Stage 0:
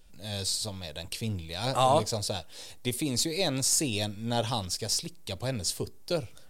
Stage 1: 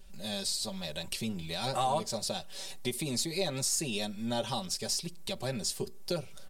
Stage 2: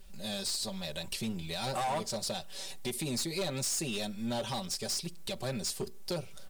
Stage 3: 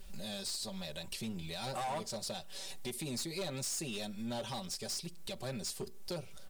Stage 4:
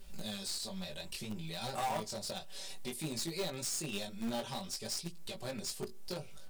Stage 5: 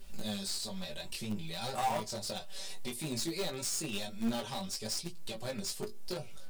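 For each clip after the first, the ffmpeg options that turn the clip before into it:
ffmpeg -i in.wav -af "aecho=1:1:5.2:0.95,acompressor=threshold=-34dB:ratio=2" out.wav
ffmpeg -i in.wav -af "acrusher=bits=10:mix=0:aa=0.000001,asoftclip=type=hard:threshold=-29dB" out.wav
ffmpeg -i in.wav -af "alimiter=level_in=12.5dB:limit=-24dB:level=0:latency=1:release=447,volume=-12.5dB,volume=2.5dB" out.wav
ffmpeg -i in.wav -filter_complex "[0:a]flanger=delay=17.5:depth=4.3:speed=0.58,asplit=2[link_01][link_02];[link_02]acrusher=bits=5:mix=0:aa=0.000001,volume=-10dB[link_03];[link_01][link_03]amix=inputs=2:normalize=0,volume=2dB" out.wav
ffmpeg -i in.wav -af "flanger=delay=8:depth=2.5:regen=51:speed=0.97:shape=triangular,volume=6dB" out.wav

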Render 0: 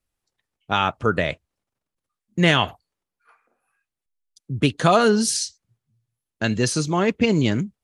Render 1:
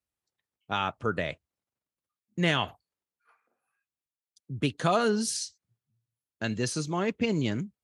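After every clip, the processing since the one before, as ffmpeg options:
ffmpeg -i in.wav -af "highpass=65,volume=-8.5dB" out.wav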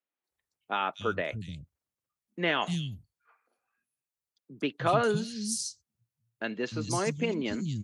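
ffmpeg -i in.wav -filter_complex "[0:a]acrossover=split=210|3800[link_01][link_02][link_03];[link_03]adelay=240[link_04];[link_01]adelay=300[link_05];[link_05][link_02][link_04]amix=inputs=3:normalize=0" out.wav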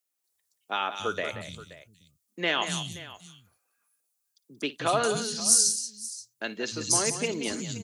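ffmpeg -i in.wav -af "bass=frequency=250:gain=-6,treble=frequency=4000:gain=15,aecho=1:1:56|180|526:0.112|0.299|0.133" out.wav

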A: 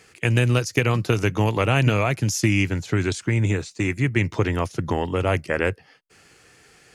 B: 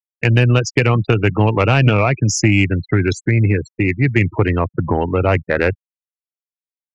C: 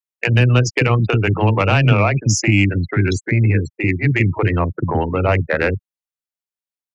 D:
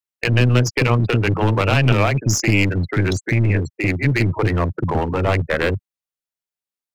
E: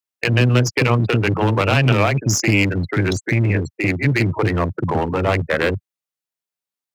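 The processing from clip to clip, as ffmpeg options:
ffmpeg -i in.wav -af "afftfilt=real='re*gte(hypot(re,im),0.0501)':imag='im*gte(hypot(re,im),0.0501)':win_size=1024:overlap=0.75,acontrast=82" out.wav
ffmpeg -i in.wav -filter_complex "[0:a]acrossover=split=360[link_01][link_02];[link_01]adelay=40[link_03];[link_03][link_02]amix=inputs=2:normalize=0" out.wav
ffmpeg -i in.wav -af "aeval=exprs='clip(val(0),-1,0.133)':channel_layout=same" out.wav
ffmpeg -i in.wav -af "highpass=93,volume=1dB" out.wav

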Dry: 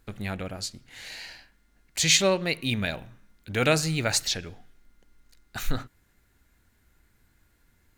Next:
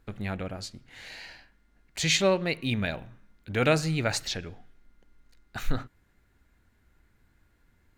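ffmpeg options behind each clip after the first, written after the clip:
ffmpeg -i in.wav -af "highshelf=frequency=4300:gain=-10.5" out.wav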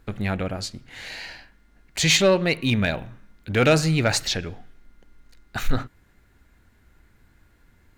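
ffmpeg -i in.wav -af "asoftclip=type=tanh:threshold=-16.5dB,volume=7.5dB" out.wav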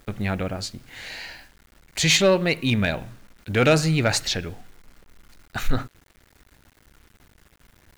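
ffmpeg -i in.wav -af "acrusher=bits=8:mix=0:aa=0.000001" out.wav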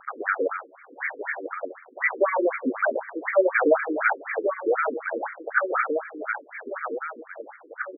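ffmpeg -i in.wav -filter_complex "[0:a]asplit=2[link_01][link_02];[link_02]adelay=1117,lowpass=frequency=4000:poles=1,volume=-6dB,asplit=2[link_03][link_04];[link_04]adelay=1117,lowpass=frequency=4000:poles=1,volume=0.49,asplit=2[link_05][link_06];[link_06]adelay=1117,lowpass=frequency=4000:poles=1,volume=0.49,asplit=2[link_07][link_08];[link_08]adelay=1117,lowpass=frequency=4000:poles=1,volume=0.49,asplit=2[link_09][link_10];[link_10]adelay=1117,lowpass=frequency=4000:poles=1,volume=0.49,asplit=2[link_11][link_12];[link_12]adelay=1117,lowpass=frequency=4000:poles=1,volume=0.49[link_13];[link_01][link_03][link_05][link_07][link_09][link_11][link_13]amix=inputs=7:normalize=0,asplit=2[link_14][link_15];[link_15]highpass=frequency=720:poles=1,volume=20dB,asoftclip=type=tanh:threshold=-8dB[link_16];[link_14][link_16]amix=inputs=2:normalize=0,lowpass=frequency=3300:poles=1,volume=-6dB,afftfilt=real='re*between(b*sr/1024,350*pow(1700/350,0.5+0.5*sin(2*PI*4*pts/sr))/1.41,350*pow(1700/350,0.5+0.5*sin(2*PI*4*pts/sr))*1.41)':imag='im*between(b*sr/1024,350*pow(1700/350,0.5+0.5*sin(2*PI*4*pts/sr))/1.41,350*pow(1700/350,0.5+0.5*sin(2*PI*4*pts/sr))*1.41)':win_size=1024:overlap=0.75,volume=2dB" out.wav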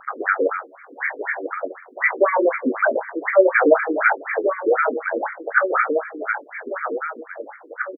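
ffmpeg -i in.wav -filter_complex "[0:a]asplit=2[link_01][link_02];[link_02]adelay=21,volume=-12dB[link_03];[link_01][link_03]amix=inputs=2:normalize=0,volume=5dB" out.wav

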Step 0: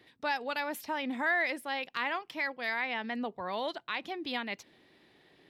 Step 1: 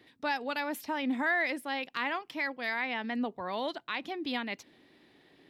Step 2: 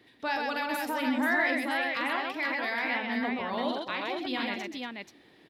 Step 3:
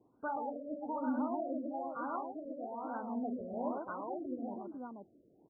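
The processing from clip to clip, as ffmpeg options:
ffmpeg -i in.wav -af "equalizer=frequency=270:width_type=o:width=0.5:gain=5.5" out.wav
ffmpeg -i in.wav -af "aecho=1:1:43|129|238|483:0.473|0.708|0.188|0.631" out.wav
ffmpeg -i in.wav -af "afftfilt=real='re*lt(b*sr/1024,650*pow(1600/650,0.5+0.5*sin(2*PI*1.1*pts/sr)))':imag='im*lt(b*sr/1024,650*pow(1600/650,0.5+0.5*sin(2*PI*1.1*pts/sr)))':win_size=1024:overlap=0.75,volume=-5.5dB" out.wav

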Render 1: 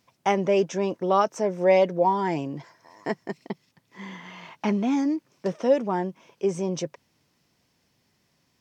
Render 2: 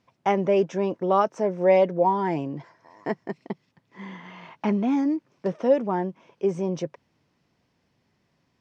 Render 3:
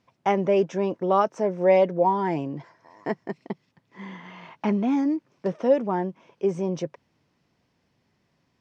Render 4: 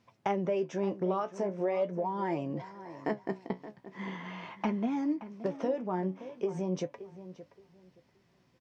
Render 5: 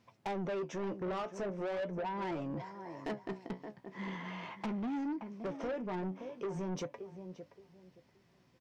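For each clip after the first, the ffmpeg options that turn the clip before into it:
ffmpeg -i in.wav -af "aemphasis=mode=reproduction:type=75fm" out.wav
ffmpeg -i in.wav -af anull out.wav
ffmpeg -i in.wav -filter_complex "[0:a]acompressor=threshold=-29dB:ratio=6,flanger=delay=8.8:depth=7.6:regen=56:speed=0.42:shape=sinusoidal,asplit=2[link_01][link_02];[link_02]adelay=573,lowpass=frequency=2400:poles=1,volume=-14dB,asplit=2[link_03][link_04];[link_04]adelay=573,lowpass=frequency=2400:poles=1,volume=0.23,asplit=2[link_05][link_06];[link_06]adelay=573,lowpass=frequency=2400:poles=1,volume=0.23[link_07];[link_01][link_03][link_05][link_07]amix=inputs=4:normalize=0,volume=4.5dB" out.wav
ffmpeg -i in.wav -af "asoftclip=type=tanh:threshold=-33.5dB" out.wav

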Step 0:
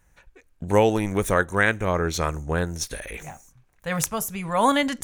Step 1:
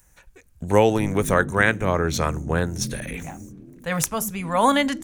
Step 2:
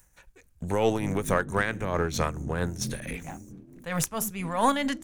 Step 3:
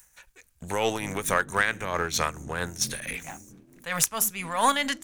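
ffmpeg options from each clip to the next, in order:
ffmpeg -i in.wav -filter_complex "[0:a]acrossover=split=240|5700[link_01][link_02][link_03];[link_01]asplit=8[link_04][link_05][link_06][link_07][link_08][link_09][link_10][link_11];[link_05]adelay=276,afreqshift=41,volume=-5.5dB[link_12];[link_06]adelay=552,afreqshift=82,volume=-10.9dB[link_13];[link_07]adelay=828,afreqshift=123,volume=-16.2dB[link_14];[link_08]adelay=1104,afreqshift=164,volume=-21.6dB[link_15];[link_09]adelay=1380,afreqshift=205,volume=-26.9dB[link_16];[link_10]adelay=1656,afreqshift=246,volume=-32.3dB[link_17];[link_11]adelay=1932,afreqshift=287,volume=-37.6dB[link_18];[link_04][link_12][link_13][link_14][link_15][link_16][link_17][link_18]amix=inputs=8:normalize=0[link_19];[link_03]acompressor=mode=upward:threshold=-55dB:ratio=2.5[link_20];[link_19][link_02][link_20]amix=inputs=3:normalize=0,volume=1.5dB" out.wav
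ffmpeg -i in.wav -filter_complex "[0:a]aeval=exprs='if(lt(val(0),0),0.708*val(0),val(0))':channel_layout=same,asplit=2[link_01][link_02];[link_02]alimiter=limit=-12.5dB:level=0:latency=1:release=234,volume=1dB[link_03];[link_01][link_03]amix=inputs=2:normalize=0,tremolo=f=4.5:d=0.53,volume=-7dB" out.wav
ffmpeg -i in.wav -af "tiltshelf=frequency=750:gain=-7" out.wav

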